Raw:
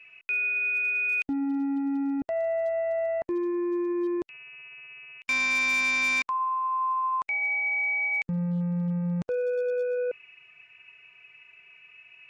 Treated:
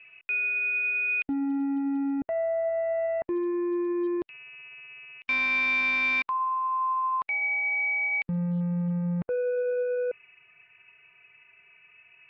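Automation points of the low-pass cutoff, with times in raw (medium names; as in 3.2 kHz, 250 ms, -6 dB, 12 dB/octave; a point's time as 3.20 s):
low-pass 24 dB/octave
2.10 s 3.3 kHz
2.54 s 1.8 kHz
3.55 s 3.8 kHz
8.57 s 3.8 kHz
9.15 s 2.4 kHz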